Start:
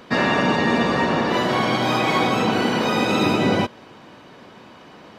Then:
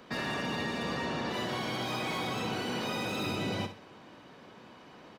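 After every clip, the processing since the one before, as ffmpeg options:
ffmpeg -i in.wav -filter_complex "[0:a]acrossover=split=120|2600[link_01][link_02][link_03];[link_02]alimiter=limit=-20dB:level=0:latency=1[link_04];[link_03]asoftclip=type=hard:threshold=-30.5dB[link_05];[link_01][link_04][link_05]amix=inputs=3:normalize=0,aecho=1:1:62|124|186:0.299|0.0925|0.0287,volume=-8.5dB" out.wav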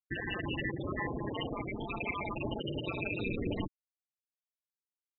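ffmpeg -i in.wav -af "afftfilt=real='re*gte(hypot(re,im),0.0708)':imag='im*gte(hypot(re,im),0.0708)':win_size=1024:overlap=0.75,aeval=exprs='val(0)*sin(2*PI*96*n/s)':channel_layout=same,highshelf=frequency=3900:width_type=q:width=3:gain=-12.5,volume=4dB" out.wav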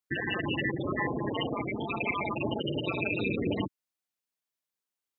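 ffmpeg -i in.wav -af "highpass=110,volume=5.5dB" out.wav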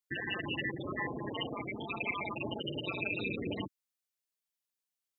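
ffmpeg -i in.wav -af "highshelf=frequency=2200:gain=7.5,volume=-7.5dB" out.wav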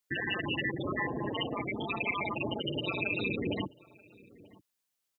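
ffmpeg -i in.wav -filter_complex "[0:a]asplit=2[link_01][link_02];[link_02]alimiter=level_in=9dB:limit=-24dB:level=0:latency=1:release=296,volume=-9dB,volume=1dB[link_03];[link_01][link_03]amix=inputs=2:normalize=0,asplit=2[link_04][link_05];[link_05]adelay=932.9,volume=-22dB,highshelf=frequency=4000:gain=-21[link_06];[link_04][link_06]amix=inputs=2:normalize=0" out.wav

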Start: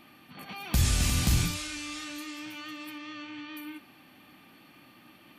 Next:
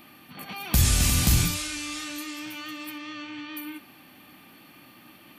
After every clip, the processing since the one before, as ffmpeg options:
ffmpeg -i in.wav -af "highshelf=frequency=11000:gain=11,volume=3.5dB" out.wav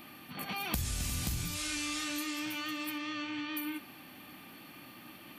ffmpeg -i in.wav -af "acompressor=threshold=-31dB:ratio=16" out.wav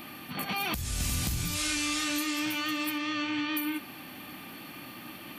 ffmpeg -i in.wav -af "alimiter=level_in=2.5dB:limit=-24dB:level=0:latency=1:release=419,volume=-2.5dB,volume=7dB" out.wav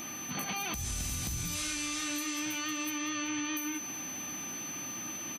ffmpeg -i in.wav -af "acompressor=threshold=-33dB:ratio=6,aeval=exprs='val(0)+0.00891*sin(2*PI*6100*n/s)':channel_layout=same,aecho=1:1:190|380|570|760|950:0.133|0.076|0.0433|0.0247|0.0141" out.wav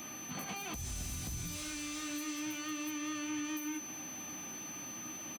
ffmpeg -i in.wav -filter_complex "[0:a]acrossover=split=330|1100[link_01][link_02][link_03];[link_02]asplit=2[link_04][link_05];[link_05]adelay=13,volume=-2.5dB[link_06];[link_04][link_06]amix=inputs=2:normalize=0[link_07];[link_03]asoftclip=type=tanh:threshold=-35dB[link_08];[link_01][link_07][link_08]amix=inputs=3:normalize=0,volume=-4dB" out.wav

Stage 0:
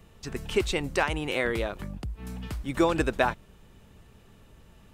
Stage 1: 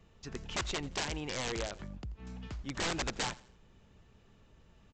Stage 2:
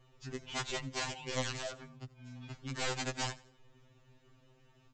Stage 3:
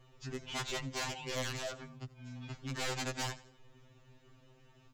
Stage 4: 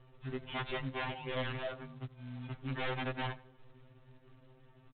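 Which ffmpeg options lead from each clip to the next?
ffmpeg -i in.wav -af "aresample=16000,aeval=exprs='(mod(10.6*val(0)+1,2)-1)/10.6':channel_layout=same,aresample=44100,aecho=1:1:85|170|255:0.0944|0.0359|0.0136,volume=-7.5dB" out.wav
ffmpeg -i in.wav -af "afftfilt=real='re*2.45*eq(mod(b,6),0)':imag='im*2.45*eq(mod(b,6),0)':win_size=2048:overlap=0.75,volume=1dB" out.wav
ffmpeg -i in.wav -af "asoftclip=type=tanh:threshold=-34dB,volume=2.5dB" out.wav
ffmpeg -i in.wav -af "adynamicsmooth=sensitivity=7:basefreq=2100,aresample=8000,acrusher=bits=4:mode=log:mix=0:aa=0.000001,aresample=44100,volume=2dB" out.wav

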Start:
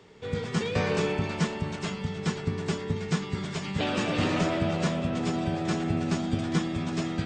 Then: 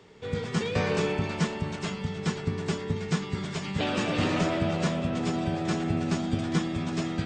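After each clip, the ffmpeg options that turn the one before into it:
ffmpeg -i in.wav -af anull out.wav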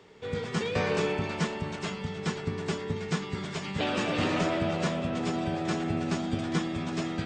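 ffmpeg -i in.wav -af "bass=frequency=250:gain=-4,treble=frequency=4000:gain=-2" out.wav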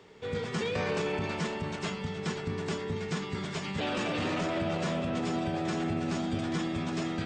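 ffmpeg -i in.wav -af "alimiter=limit=-23dB:level=0:latency=1:release=16" out.wav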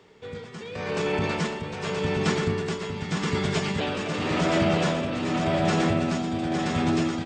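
ffmpeg -i in.wav -filter_complex "[0:a]dynaudnorm=framelen=680:gausssize=3:maxgain=8.5dB,tremolo=f=0.86:d=0.62,asplit=2[link_01][link_02];[link_02]aecho=0:1:976:0.631[link_03];[link_01][link_03]amix=inputs=2:normalize=0" out.wav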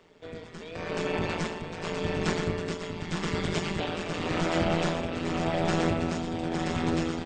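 ffmpeg -i in.wav -af "tremolo=f=170:d=0.857" out.wav

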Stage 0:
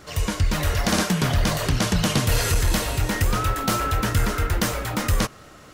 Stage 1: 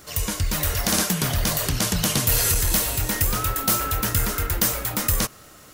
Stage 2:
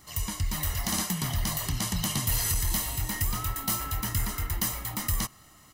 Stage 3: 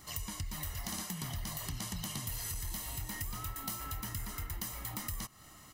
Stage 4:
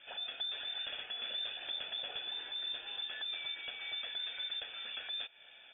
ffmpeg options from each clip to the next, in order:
ffmpeg -i in.wav -af "aemphasis=mode=production:type=50fm,volume=-3dB" out.wav
ffmpeg -i in.wav -af "aecho=1:1:1:0.64,volume=-9dB" out.wav
ffmpeg -i in.wav -af "acompressor=threshold=-37dB:ratio=6" out.wav
ffmpeg -i in.wav -af "lowpass=frequency=3100:width_type=q:width=0.5098,lowpass=frequency=3100:width_type=q:width=0.6013,lowpass=frequency=3100:width_type=q:width=0.9,lowpass=frequency=3100:width_type=q:width=2.563,afreqshift=-3600" out.wav

